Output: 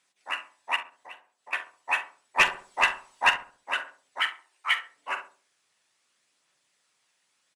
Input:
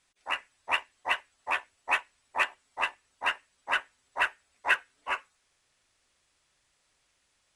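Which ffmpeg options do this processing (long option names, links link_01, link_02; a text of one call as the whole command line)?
ffmpeg -i in.wav -filter_complex "[0:a]asettb=1/sr,asplit=3[link_01][link_02][link_03];[link_01]atrim=end=0.764[link_04];[link_02]atrim=start=0.76:end=1.53,asetpts=PTS-STARTPTS,afade=type=in:duration=0.004:curve=qsin,afade=type=out:start_time=0.766:duration=0.004:curve=qsin,acompressor=threshold=-48dB:ratio=3[link_05];[link_03]atrim=start=1.526[link_06];[link_04][link_05]acrossfade=duration=0.004:curve1=hsin:curve2=qsin[link_07];[link_07][link_06]acrossfade=duration=0.004:curve1=qsin:curve2=hsin,asettb=1/sr,asplit=3[link_08][link_09][link_10];[link_08]atrim=end=4.204[link_11];[link_09]atrim=start=4.2:end=4.76,asetpts=PTS-STARTPTS,afade=type=in:duration=0.004:curve=qsin,afade=type=out:start_time=0.556:duration=0.004:curve=qsin,afreqshift=320[link_12];[link_10]atrim=start=4.756[link_13];[link_11][link_12]acrossfade=duration=0.004:curve1=hsin:curve2=qsin[link_14];[link_14][link_13]acrossfade=duration=0.004:curve1=qsin:curve2=hsin,highpass=frequency=140:width=0.5412,highpass=frequency=140:width=1.3066,lowshelf=frequency=480:gain=-5.5,asplit=3[link_15][link_16][link_17];[link_15]afade=type=out:start_time=2.37:duration=0.02[link_18];[link_16]aeval=exprs='0.282*sin(PI/2*1.78*val(0)/0.282)':channel_layout=same,afade=type=in:start_time=2.37:duration=0.02,afade=type=out:start_time=3.29:duration=0.02[link_19];[link_17]afade=type=in:start_time=3.29:duration=0.02[link_20];[link_18][link_19][link_20]amix=inputs=3:normalize=0,asplit=2[link_21][link_22];[link_22]adelay=44,volume=-13dB[link_23];[link_21][link_23]amix=inputs=2:normalize=0,asplit=2[link_24][link_25];[link_25]adelay=68,lowpass=frequency=1100:poles=1,volume=-9dB,asplit=2[link_26][link_27];[link_27]adelay=68,lowpass=frequency=1100:poles=1,volume=0.42,asplit=2[link_28][link_29];[link_29]adelay=68,lowpass=frequency=1100:poles=1,volume=0.42,asplit=2[link_30][link_31];[link_31]adelay=68,lowpass=frequency=1100:poles=1,volume=0.42,asplit=2[link_32][link_33];[link_33]adelay=68,lowpass=frequency=1100:poles=1,volume=0.42[link_34];[link_24][link_26][link_28][link_30][link_32][link_34]amix=inputs=6:normalize=0,aphaser=in_gain=1:out_gain=1:delay=1.2:decay=0.22:speed=0.77:type=triangular" out.wav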